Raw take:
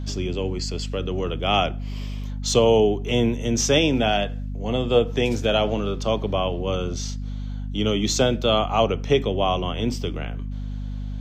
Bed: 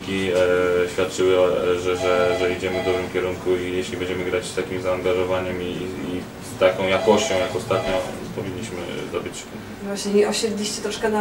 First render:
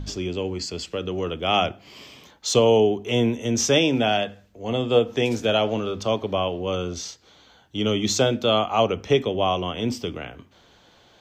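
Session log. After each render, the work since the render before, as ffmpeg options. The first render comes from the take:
-af "bandreject=f=50:t=h:w=4,bandreject=f=100:t=h:w=4,bandreject=f=150:t=h:w=4,bandreject=f=200:t=h:w=4,bandreject=f=250:t=h:w=4"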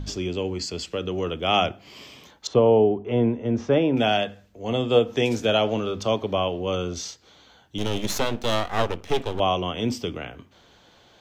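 -filter_complex "[0:a]asettb=1/sr,asplit=3[a][b][c];[a]atrim=end=2.474[d];[b]atrim=start=2.47:end=3.97,asetpts=PTS-STARTPTS,afade=t=in:d=0.004:c=qsin,afade=t=out:st=1.496:d=0.004:c=qsin,lowpass=1.4k[e];[c]atrim=start=3.966[f];[d][e]acrossfade=d=0.004:c1=hsin:c2=qsin[g];[g][f]acrossfade=d=0.004:c1=qsin:c2=hsin,asettb=1/sr,asplit=3[h][i][j];[h]atrim=end=7.784[k];[i]atrim=start=7.78:end=9.4,asetpts=PTS-STARTPTS,afade=t=in:d=0.004:c=qsin,afade=t=out:st=1.616:d=0.004:c=qsin,aeval=exprs='max(val(0),0)':c=same[l];[j]atrim=start=9.396[m];[k][l]acrossfade=d=0.004:c1=hsin:c2=qsin[n];[n][m]acrossfade=d=0.004:c1=qsin:c2=hsin"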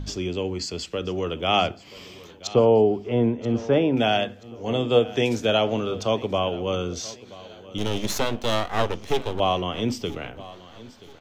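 -af "aecho=1:1:980|1960|2940:0.112|0.046|0.0189"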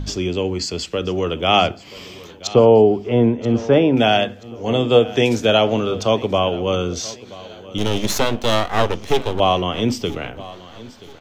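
-af "volume=6dB,alimiter=limit=-2dB:level=0:latency=1"

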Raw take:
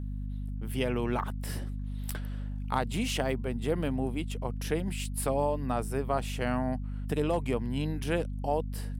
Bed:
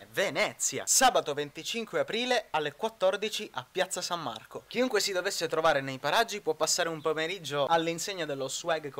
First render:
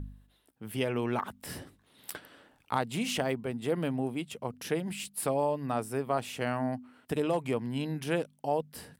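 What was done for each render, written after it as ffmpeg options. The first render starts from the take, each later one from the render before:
-af "bandreject=f=50:t=h:w=4,bandreject=f=100:t=h:w=4,bandreject=f=150:t=h:w=4,bandreject=f=200:t=h:w=4,bandreject=f=250:t=h:w=4"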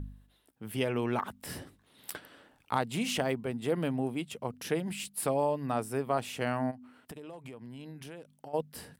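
-filter_complex "[0:a]asplit=3[a][b][c];[a]afade=t=out:st=6.7:d=0.02[d];[b]acompressor=threshold=-42dB:ratio=8:attack=3.2:release=140:knee=1:detection=peak,afade=t=in:st=6.7:d=0.02,afade=t=out:st=8.53:d=0.02[e];[c]afade=t=in:st=8.53:d=0.02[f];[d][e][f]amix=inputs=3:normalize=0"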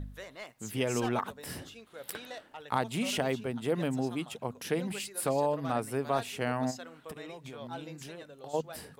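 -filter_complex "[1:a]volume=-17dB[a];[0:a][a]amix=inputs=2:normalize=0"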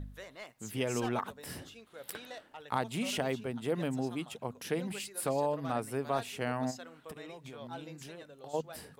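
-af "volume=-2.5dB"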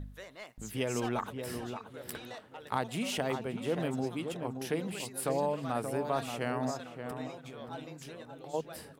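-filter_complex "[0:a]asplit=2[a][b];[b]adelay=578,lowpass=f=1.5k:p=1,volume=-6.5dB,asplit=2[c][d];[d]adelay=578,lowpass=f=1.5k:p=1,volume=0.33,asplit=2[e][f];[f]adelay=578,lowpass=f=1.5k:p=1,volume=0.33,asplit=2[g][h];[h]adelay=578,lowpass=f=1.5k:p=1,volume=0.33[i];[a][c][e][g][i]amix=inputs=5:normalize=0"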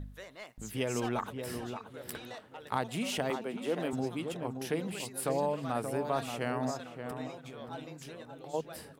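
-filter_complex "[0:a]asettb=1/sr,asplit=3[a][b][c];[a]atrim=end=3.304[d];[b]atrim=start=3.3:end=3.93,asetpts=PTS-STARTPTS,afade=t=in:d=0.004:c=qsin,afade=t=out:st=0.626:d=0.004:c=qsin,highpass=f=190:w=0.5412,highpass=f=190:w=1.3066[e];[c]atrim=start=3.926[f];[d][e]acrossfade=d=0.004:c1=hsin:c2=qsin[g];[g][f]acrossfade=d=0.004:c1=qsin:c2=hsin"

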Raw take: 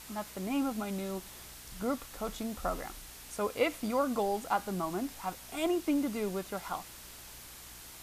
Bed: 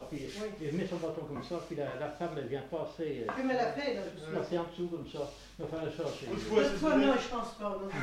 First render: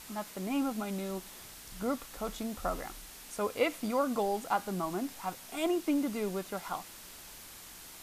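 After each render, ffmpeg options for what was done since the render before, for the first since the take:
-af "bandreject=f=60:t=h:w=4,bandreject=f=120:t=h:w=4"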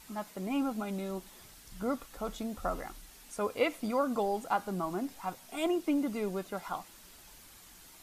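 -af "afftdn=nr=7:nf=-50"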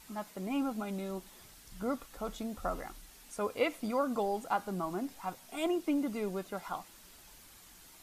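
-af "volume=-1.5dB"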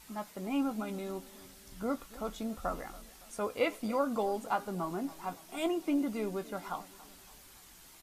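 -filter_complex "[0:a]asplit=2[a][b];[b]adelay=18,volume=-11dB[c];[a][c]amix=inputs=2:normalize=0,asplit=2[d][e];[e]adelay=281,lowpass=f=2k:p=1,volume=-18.5dB,asplit=2[f][g];[g]adelay=281,lowpass=f=2k:p=1,volume=0.5,asplit=2[h][i];[i]adelay=281,lowpass=f=2k:p=1,volume=0.5,asplit=2[j][k];[k]adelay=281,lowpass=f=2k:p=1,volume=0.5[l];[d][f][h][j][l]amix=inputs=5:normalize=0"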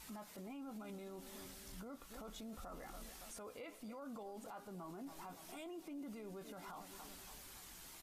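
-af "acompressor=threshold=-41dB:ratio=8,alimiter=level_in=18.5dB:limit=-24dB:level=0:latency=1:release=12,volume=-18.5dB"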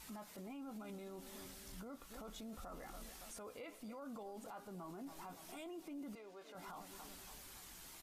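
-filter_complex "[0:a]asettb=1/sr,asplit=3[a][b][c];[a]atrim=end=6.154[d];[b]atrim=start=6.15:end=6.55,asetpts=PTS-STARTPTS,afade=t=in:d=0.004:c=qsin,afade=t=out:st=0.396:d=0.004:c=qsin,acrossover=split=380 6300:gain=0.0891 1 0.224[e][f][g];[e][f][g]amix=inputs=3:normalize=0[h];[c]atrim=start=6.546[i];[d][h]acrossfade=d=0.004:c1=hsin:c2=qsin[j];[j][i]acrossfade=d=0.004:c1=qsin:c2=hsin"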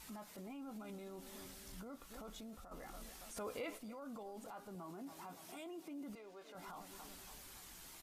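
-filter_complex "[0:a]asplit=3[a][b][c];[a]afade=t=out:st=3.36:d=0.02[d];[b]acontrast=82,afade=t=in:st=3.36:d=0.02,afade=t=out:st=3.77:d=0.02[e];[c]afade=t=in:st=3.77:d=0.02[f];[d][e][f]amix=inputs=3:normalize=0,asettb=1/sr,asplit=3[g][h][i];[g]atrim=end=4.754[j];[h]atrim=start=4.75:end=6.1,asetpts=PTS-STARTPTS,afade=t=in:d=0.004:c=qsin,afade=t=out:st=1.346:d=0.004:c=qsin,highpass=79[k];[i]atrim=start=6.096[l];[j][k]acrossfade=d=0.004:c1=hsin:c2=qsin[m];[m][l]acrossfade=d=0.004:c1=qsin:c2=hsin,asplit=2[n][o];[n]atrim=end=2.71,asetpts=PTS-STARTPTS,afade=t=out:st=2.22:d=0.49:c=qsin:silence=0.421697[p];[o]atrim=start=2.71,asetpts=PTS-STARTPTS,afade=t=in:d=0.004:c=hsin:silence=0.421697[q];[p][q]concat=n=2:v=0:a=1"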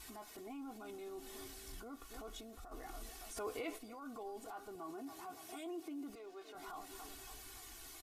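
-af "aecho=1:1:2.7:0.8"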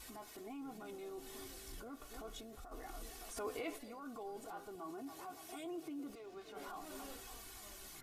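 -filter_complex "[1:a]volume=-27dB[a];[0:a][a]amix=inputs=2:normalize=0"

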